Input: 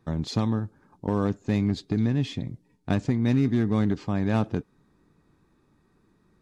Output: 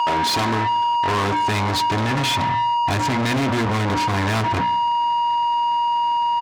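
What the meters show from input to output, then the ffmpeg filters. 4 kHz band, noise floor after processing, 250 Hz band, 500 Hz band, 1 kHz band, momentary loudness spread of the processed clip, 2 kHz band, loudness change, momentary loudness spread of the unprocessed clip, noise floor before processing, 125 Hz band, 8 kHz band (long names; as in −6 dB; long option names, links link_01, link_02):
+17.5 dB, −21 dBFS, 0.0 dB, +5.0 dB, +23.5 dB, 1 LU, +16.0 dB, +6.5 dB, 12 LU, −66 dBFS, +2.0 dB, can't be measured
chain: -filter_complex "[0:a]aeval=exprs='val(0)+0.0126*sin(2*PI*950*n/s)':channel_layout=same,asubboost=boost=11.5:cutoff=130,bandreject=frequency=60:width_type=h:width=6,bandreject=frequency=120:width_type=h:width=6,bandreject=frequency=180:width_type=h:width=6,bandreject=frequency=240:width_type=h:width=6,bandreject=frequency=300:width_type=h:width=6,aecho=1:1:2.9:0.53,asplit=2[link_01][link_02];[link_02]highpass=frequency=720:poles=1,volume=40dB,asoftclip=type=tanh:threshold=-4.5dB[link_03];[link_01][link_03]amix=inputs=2:normalize=0,lowpass=frequency=3600:poles=1,volume=-6dB,highpass=frequency=82:poles=1,lowshelf=frequency=450:gain=-5,asplit=2[link_04][link_05];[link_05]adelay=145,lowpass=frequency=2000:poles=1,volume=-18dB,asplit=2[link_06][link_07];[link_07]adelay=145,lowpass=frequency=2000:poles=1,volume=0.34,asplit=2[link_08][link_09];[link_09]adelay=145,lowpass=frequency=2000:poles=1,volume=0.34[link_10];[link_04][link_06][link_08][link_10]amix=inputs=4:normalize=0,asoftclip=type=tanh:threshold=-11.5dB,volume=-3.5dB"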